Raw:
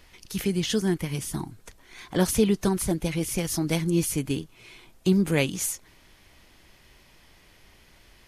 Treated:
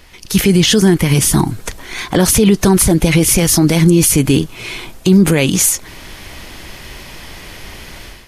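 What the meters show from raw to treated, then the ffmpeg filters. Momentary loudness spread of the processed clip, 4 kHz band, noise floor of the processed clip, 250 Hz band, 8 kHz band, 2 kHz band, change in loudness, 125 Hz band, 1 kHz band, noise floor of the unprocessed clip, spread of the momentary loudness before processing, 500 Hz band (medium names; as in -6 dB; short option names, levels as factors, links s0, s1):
12 LU, +16.0 dB, -37 dBFS, +14.0 dB, +17.5 dB, +14.5 dB, +14.5 dB, +15.0 dB, +14.0 dB, -57 dBFS, 11 LU, +12.0 dB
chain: -af "dynaudnorm=f=230:g=3:m=4.22,alimiter=level_in=3.76:limit=0.891:release=50:level=0:latency=1,volume=0.891"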